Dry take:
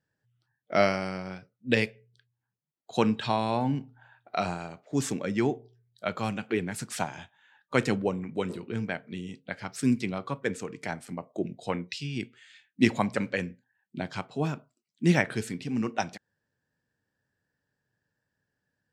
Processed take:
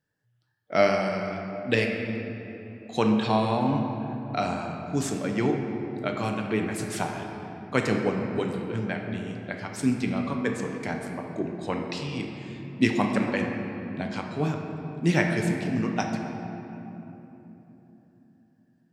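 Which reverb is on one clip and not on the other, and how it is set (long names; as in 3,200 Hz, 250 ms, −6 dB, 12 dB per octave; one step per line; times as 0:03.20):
rectangular room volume 210 cubic metres, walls hard, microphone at 0.37 metres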